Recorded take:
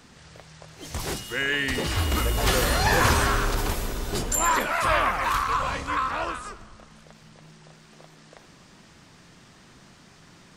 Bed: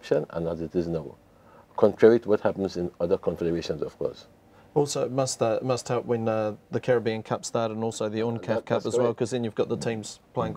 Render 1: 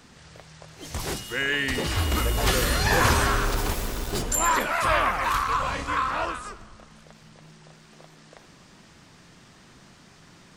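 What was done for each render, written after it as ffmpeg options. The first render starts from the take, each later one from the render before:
ffmpeg -i in.wav -filter_complex "[0:a]asettb=1/sr,asplit=3[link_01][link_02][link_03];[link_01]atrim=end=2.514[link_04];[link_02]atrim=start=2.51:end=2.91,asetpts=PTS-STARTPTS,afade=type=in:duration=0.004:curve=qsin,afade=type=out:start_time=0.396:duration=0.004:curve=qsin,equalizer=frequency=780:width_type=o:width=0.76:gain=-7[link_05];[link_03]atrim=start=2.906[link_06];[link_04][link_05]acrossfade=duration=0.004:curve1=hsin:curve2=qsin[link_07];[link_07][link_06]acrossfade=duration=0.004:curve1=qsin:curve2=hsin,asettb=1/sr,asplit=3[link_08][link_09][link_10];[link_08]atrim=end=3.444[link_11];[link_09]atrim=start=3.44:end=4.22,asetpts=PTS-STARTPTS,afade=type=in:duration=0.004:curve=qsin,afade=type=out:start_time=0.776:duration=0.004:curve=qsin,aeval=exprs='val(0)*gte(abs(val(0)),0.0211)':channel_layout=same[link_12];[link_10]atrim=start=4.216[link_13];[link_11][link_12]acrossfade=duration=0.004:curve1=hsin:curve2=qsin[link_14];[link_14][link_13]acrossfade=duration=0.004:curve1=qsin:curve2=hsin,asettb=1/sr,asplit=3[link_15][link_16][link_17];[link_15]atrim=end=5.754[link_18];[link_16]atrim=start=5.75:end=6.26,asetpts=PTS-STARTPTS,afade=type=in:duration=0.004:curve=qsin,afade=type=out:start_time=0.506:duration=0.004:curve=qsin,asplit=2[link_19][link_20];[link_20]adelay=32,volume=-5.5dB[link_21];[link_19][link_21]amix=inputs=2:normalize=0,atrim=end_sample=22491[link_22];[link_17]atrim=start=6.256[link_23];[link_18][link_22]acrossfade=duration=0.004:curve1=hsin:curve2=qsin[link_24];[link_24][link_23]acrossfade=duration=0.004:curve1=qsin:curve2=hsin" out.wav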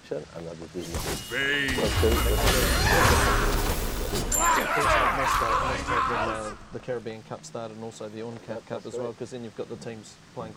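ffmpeg -i in.wav -i bed.wav -filter_complex "[1:a]volume=-9dB[link_01];[0:a][link_01]amix=inputs=2:normalize=0" out.wav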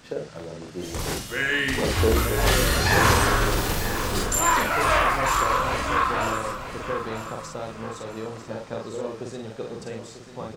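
ffmpeg -i in.wav -filter_complex "[0:a]asplit=2[link_01][link_02];[link_02]adelay=45,volume=-3dB[link_03];[link_01][link_03]amix=inputs=2:normalize=0,aecho=1:1:944|1888|2832|3776:0.282|0.113|0.0451|0.018" out.wav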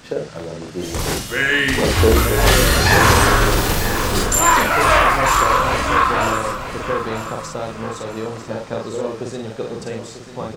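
ffmpeg -i in.wav -af "volume=7dB,alimiter=limit=-1dB:level=0:latency=1" out.wav

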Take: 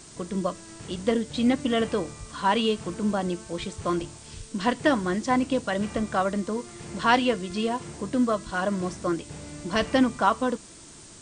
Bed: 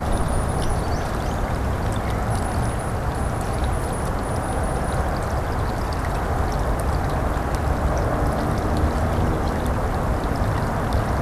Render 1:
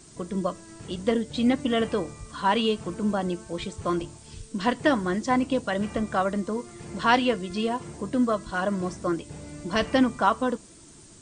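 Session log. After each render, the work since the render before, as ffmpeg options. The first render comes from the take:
ffmpeg -i in.wav -af "afftdn=noise_reduction=6:noise_floor=-47" out.wav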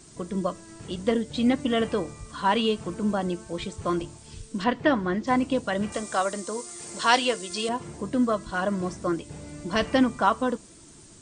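ffmpeg -i in.wav -filter_complex "[0:a]asettb=1/sr,asplit=3[link_01][link_02][link_03];[link_01]atrim=end=4.644[link_04];[link_02]atrim=start=4.64:end=5.27,asetpts=PTS-STARTPTS,afade=type=in:duration=0.004:curve=qsin,afade=type=out:start_time=0.626:duration=0.004:curve=qsin,lowpass=3700[link_05];[link_03]atrim=start=5.266[link_06];[link_04][link_05]acrossfade=duration=0.004:curve1=hsin:curve2=qsin[link_07];[link_07][link_06]acrossfade=duration=0.004:curve1=qsin:curve2=hsin,asettb=1/sr,asplit=3[link_08][link_09][link_10];[link_08]atrim=end=5.924[link_11];[link_09]atrim=start=5.92:end=7.69,asetpts=PTS-STARTPTS,afade=type=in:duration=0.004:curve=qsin,afade=type=out:start_time=1.766:duration=0.004:curve=qsin,bass=frequency=250:gain=-13,treble=frequency=4000:gain=13[link_12];[link_10]atrim=start=7.686[link_13];[link_11][link_12]acrossfade=duration=0.004:curve1=hsin:curve2=qsin[link_14];[link_14][link_13]acrossfade=duration=0.004:curve1=qsin:curve2=hsin" out.wav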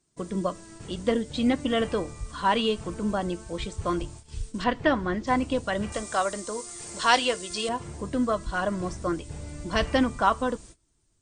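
ffmpeg -i in.wav -af "agate=range=-23dB:threshold=-45dB:ratio=16:detection=peak,asubboost=boost=4.5:cutoff=85" out.wav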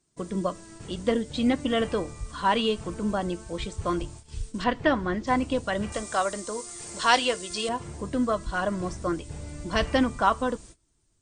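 ffmpeg -i in.wav -af anull out.wav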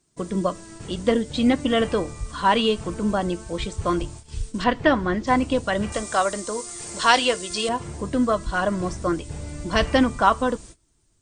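ffmpeg -i in.wav -af "volume=4.5dB,alimiter=limit=-2dB:level=0:latency=1" out.wav

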